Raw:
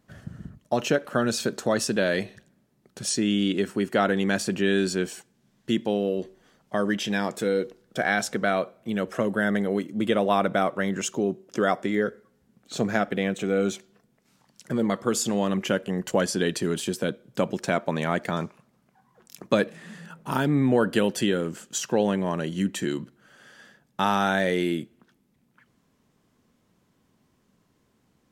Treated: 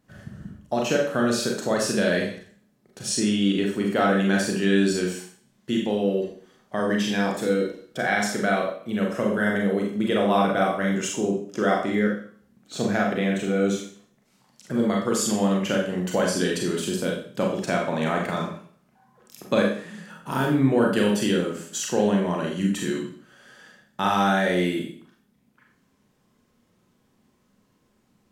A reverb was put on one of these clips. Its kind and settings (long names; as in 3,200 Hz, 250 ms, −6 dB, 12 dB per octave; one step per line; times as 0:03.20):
four-comb reverb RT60 0.5 s, combs from 30 ms, DRR −1 dB
level −2 dB